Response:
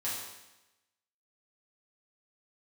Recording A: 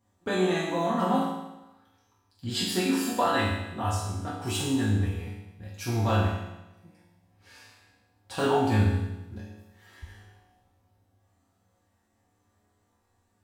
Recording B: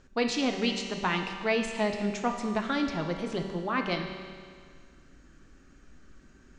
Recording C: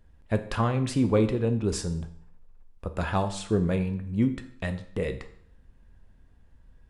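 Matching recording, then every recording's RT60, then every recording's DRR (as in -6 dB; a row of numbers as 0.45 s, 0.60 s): A; 1.0 s, 2.0 s, 0.60 s; -8.5 dB, 3.5 dB, 8.0 dB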